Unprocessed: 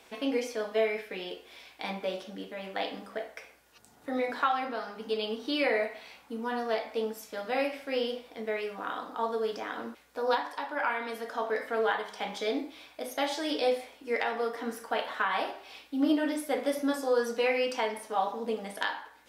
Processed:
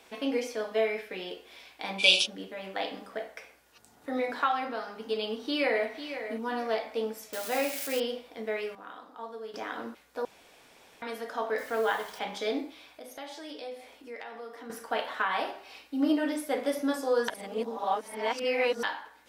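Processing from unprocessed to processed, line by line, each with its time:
1.99–2.26 spectral gain 2300–11000 Hz +24 dB
5.25–5.88 echo throw 0.5 s, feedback 25%, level -10 dB
7.33–8 switching spikes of -26.5 dBFS
8.75–9.54 gain -10 dB
10.25–11.02 room tone
11.58–12.19 requantised 8-bit, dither none
12.72–14.7 compressor 2:1, threshold -48 dBFS
15.59–16.22 notch 3400 Hz
17.28–18.83 reverse
whole clip: notches 50/100/150/200 Hz

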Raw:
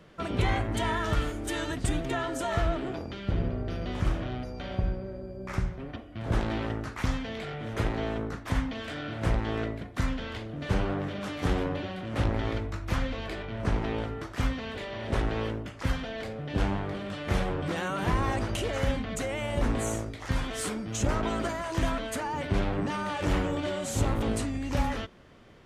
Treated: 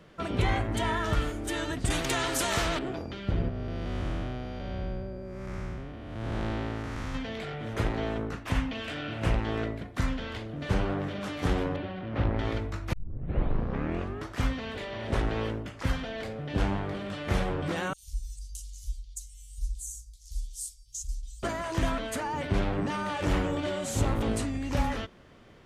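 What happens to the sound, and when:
1.9–2.79 spectral compressor 2:1
3.49–7.15 time blur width 0.312 s
8.28–9.42 bell 2700 Hz +7 dB 0.33 oct
11.76–12.39 air absorption 260 m
12.93 tape start 1.34 s
17.93–21.43 inverse Chebyshev band-stop 190–1500 Hz, stop band 70 dB

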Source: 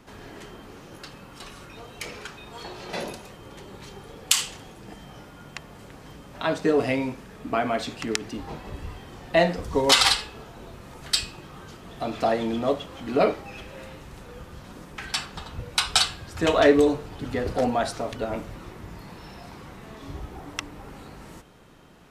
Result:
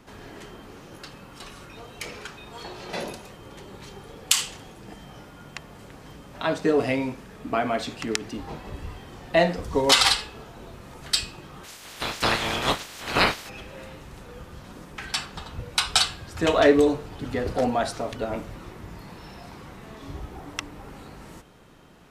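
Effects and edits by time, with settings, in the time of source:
11.63–13.48 spectral limiter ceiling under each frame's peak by 29 dB

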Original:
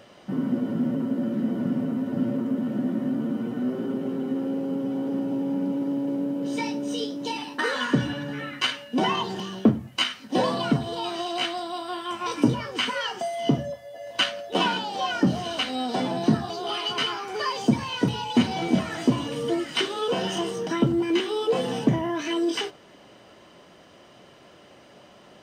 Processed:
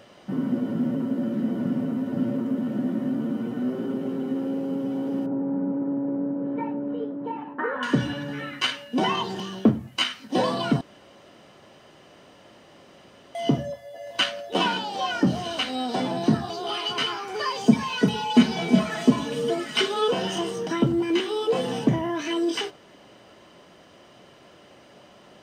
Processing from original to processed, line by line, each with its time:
5.26–7.83 LPF 1600 Hz 24 dB/oct
10.81–13.35 room tone
17.66–20.11 comb 4.7 ms, depth 78%

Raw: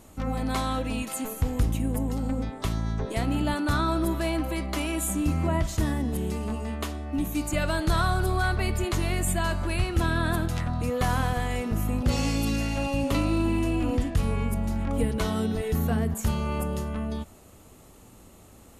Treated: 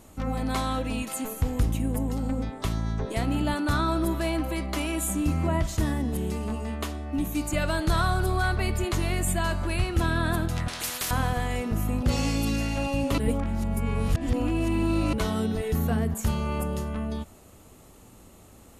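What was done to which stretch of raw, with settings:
10.68–11.11 spectral compressor 10:1
13.18–15.13 reverse

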